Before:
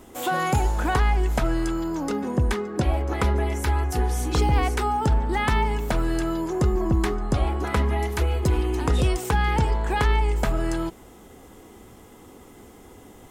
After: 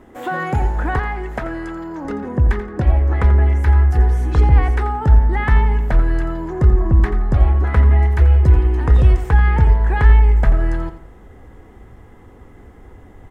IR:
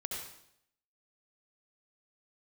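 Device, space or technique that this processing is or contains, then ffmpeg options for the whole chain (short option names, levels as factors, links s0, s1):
through cloth: -filter_complex "[0:a]equalizer=f=1800:t=o:w=0.51:g=9,highshelf=f=2700:g=-18,aecho=1:1:86|172|258:0.251|0.0754|0.0226,asubboost=boost=3:cutoff=120,asettb=1/sr,asplit=3[s0][s1][s2];[s0]atrim=end=0.994[s3];[s1]atrim=start=0.99:end=2.05,asetpts=PTS-STARTPTS,afade=t=in:d=0.004:c=qsin,afade=t=out:st=1.056:d=0.004:c=qsin,highpass=f=230:p=1[s4];[s2]atrim=start=2.046[s5];[s3][s4]acrossfade=d=0.004:c1=hsin:c2=qsin[s6];[s6][s5]acrossfade=d=0.004:c1=qsin:c2=hsin,volume=1.33"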